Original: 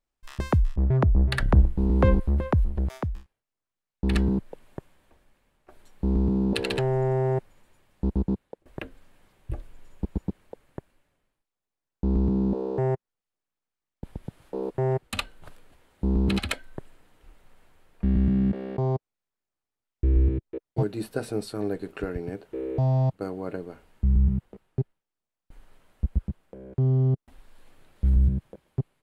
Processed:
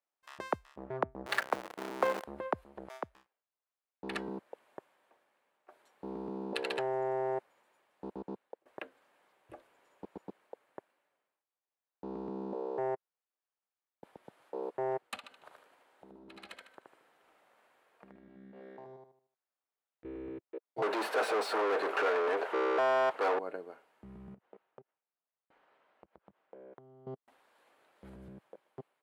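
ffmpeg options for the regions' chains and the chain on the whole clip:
-filter_complex "[0:a]asettb=1/sr,asplit=3[s0][s1][s2];[s0]atrim=end=1.264[s3];[s1]atrim=start=1.26:end=2.25,asetpts=PTS-STARTPTS,afade=t=in:d=0.004:c=qsin,afade=t=out:st=0.986:d=0.004:c=qsin,aeval=exprs='val(0)+0.5*0.0708*sgn(val(0))':c=same,highpass=f=430:p=1[s4];[s2]atrim=start=2.246[s5];[s3][s4]acrossfade=d=0.004:c1=hsin:c2=qsin[s6];[s6][s5]acrossfade=d=0.004:c1=qsin:c2=hsin,asettb=1/sr,asplit=3[s7][s8][s9];[s7]atrim=end=15.164[s10];[s8]atrim=start=15.16:end=20.05,asetpts=PTS-STARTPTS,afade=t=in:d=0.004:c=qsin,afade=t=out:st=4.886:d=0.004:c=qsin,acompressor=threshold=0.01:ratio=4:attack=3.2:release=140:knee=1:detection=peak,aecho=1:1:76|152|228|304|380:0.668|0.247|0.0915|0.0339|0.0125,atrim=end_sample=215649[s11];[s9]atrim=start=20.046[s12];[s10][s11]acrossfade=d=0.004:c1=hsin:c2=qsin[s13];[s13][s12]acrossfade=d=0.004:c1=qsin:c2=hsin,asettb=1/sr,asplit=3[s14][s15][s16];[s14]atrim=end=20.824[s17];[s15]atrim=start=20.82:end=23.39,asetpts=PTS-STARTPTS,afade=t=in:d=0.004:c=qsin,afade=t=out:st=2.566:d=0.004:c=qsin,highpass=51,asplit=2[s18][s19];[s19]highpass=f=720:p=1,volume=79.4,asoftclip=type=tanh:threshold=0.188[s20];[s18][s20]amix=inputs=2:normalize=0,lowpass=f=1600:p=1,volume=0.501,bass=f=250:g=-13,treble=f=4000:g=0[s21];[s16]atrim=start=23.386[s22];[s17][s21]acrossfade=d=0.004:c1=hsin:c2=qsin[s23];[s23][s22]acrossfade=d=0.004:c1=qsin:c2=hsin,asettb=1/sr,asplit=3[s24][s25][s26];[s24]atrim=end=24.344[s27];[s25]atrim=start=24.34:end=27.07,asetpts=PTS-STARTPTS,afade=t=in:d=0.004:c=qsin,afade=t=out:st=2.726:d=0.004:c=qsin,lowpass=3700,acompressor=threshold=0.0158:ratio=8:attack=3.2:release=140:knee=1:detection=peak[s28];[s26]atrim=start=27.066[s29];[s27][s28]acrossfade=d=0.004:c1=hsin:c2=qsin[s30];[s30][s29]acrossfade=d=0.004:c1=qsin:c2=hsin,highpass=610,highshelf=f=2200:g=-11.5"

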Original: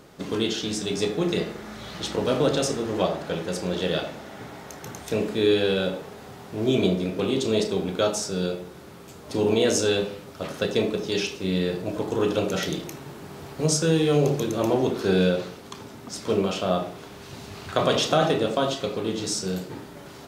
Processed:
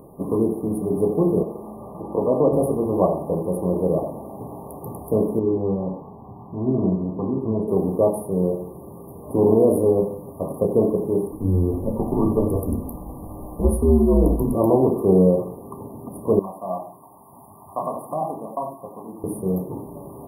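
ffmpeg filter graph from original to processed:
-filter_complex "[0:a]asettb=1/sr,asplit=3[s0][s1][s2];[s0]atrim=end=1.434[s3];[s1]atrim=start=1.43:end=2.53,asetpts=PTS-STARTPTS,afade=t=in:d=0.004:c=qsin,afade=t=out:st=1.096:d=0.004:c=qsin,acrossover=split=3900[s4][s5];[s5]acompressor=threshold=0.00178:ratio=4:attack=1:release=60[s6];[s4][s6]amix=inputs=2:normalize=0,lowshelf=f=160:g=-10[s7];[s2]atrim=start=2.526[s8];[s3][s7]acrossfade=d=0.004:c1=hsin:c2=qsin[s9];[s9][s8]acrossfade=d=0.004:c1=qsin:c2=hsin,asettb=1/sr,asplit=3[s10][s11][s12];[s10]atrim=end=5.394[s13];[s11]atrim=start=5.39:end=7.68,asetpts=PTS-STARTPTS,afade=t=in:d=0.004:c=qsin,afade=t=out:st=2.286:d=0.004:c=qsin,highshelf=f=7700:t=q:w=3:g=-14,aecho=1:1:1:0.5,atrim=end_sample=100989,flanger=delay=3.7:depth=6.5:regen=74:speed=1.6:shape=sinusoidal[s14];[s12]atrim=start=7.676[s15];[s13][s14]acrossfade=d=0.004:c1=hsin:c2=qsin[s16];[s16][s15]acrossfade=d=0.004:c1=qsin:c2=hsin,asettb=1/sr,asplit=3[s17][s18][s19];[s17]atrim=end=11.324[s20];[s18]atrim=start=11.32:end=14.55,asetpts=PTS-STARTPTS,afade=t=in:d=0.004:c=qsin,afade=t=out:st=3.226:d=0.004:c=qsin,bandreject=f=430:w=12,afreqshift=-90[s21];[s19]atrim=start=14.546[s22];[s20][s21]acrossfade=d=0.004:c1=hsin:c2=qsin[s23];[s23][s22]acrossfade=d=0.004:c1=qsin:c2=hsin,asettb=1/sr,asplit=3[s24][s25][s26];[s24]atrim=end=16.394[s27];[s25]atrim=start=16.39:end=19.24,asetpts=PTS-STARTPTS,afade=t=in:d=0.004:c=qsin,afade=t=out:st=2.846:d=0.004:c=qsin,highpass=f=790:p=1,aecho=1:1:1.1:0.66,atrim=end_sample=125685,flanger=delay=0.6:depth=4:regen=-56:speed=1.7:shape=sinusoidal[s28];[s26]atrim=start=19.236[s29];[s27][s28]acrossfade=d=0.004:c1=hsin:c2=qsin[s30];[s30][s29]acrossfade=d=0.004:c1=qsin:c2=hsin,afftfilt=real='re*(1-between(b*sr/4096,1200,9300))':imag='im*(1-between(b*sr/4096,1200,9300))':win_size=4096:overlap=0.75,equalizer=f=2400:t=o:w=1.4:g=-10,volume=2"

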